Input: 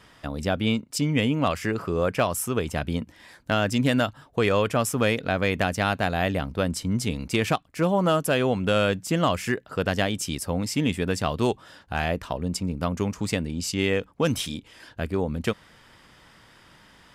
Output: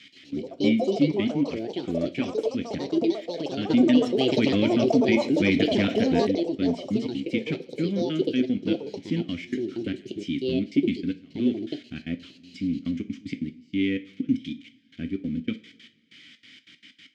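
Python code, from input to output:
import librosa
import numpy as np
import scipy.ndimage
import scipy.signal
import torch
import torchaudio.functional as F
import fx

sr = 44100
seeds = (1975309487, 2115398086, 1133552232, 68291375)

y = x + 0.5 * 10.0 ** (-28.0 / 20.0) * np.diff(np.sign(x), prepend=np.sign(x[:1]))
y = fx.highpass(y, sr, hz=120.0, slope=6)
y = fx.bass_treble(y, sr, bass_db=10, treble_db=6)
y = fx.leveller(y, sr, passes=1)
y = fx.step_gate(y, sr, bpm=189, pattern='x.x.x...xxx.xx.', floor_db=-24.0, edge_ms=4.5)
y = fx.vowel_filter(y, sr, vowel='i')
y = fx.rev_double_slope(y, sr, seeds[0], early_s=0.28, late_s=1.6, knee_db=-21, drr_db=7.5)
y = fx.echo_pitch(y, sr, ms=125, semitones=5, count=3, db_per_echo=-3.0)
y = fx.air_absorb(y, sr, metres=160.0)
y = fx.env_flatten(y, sr, amount_pct=50, at=(3.7, 6.27))
y = F.gain(torch.from_numpy(y), 4.5).numpy()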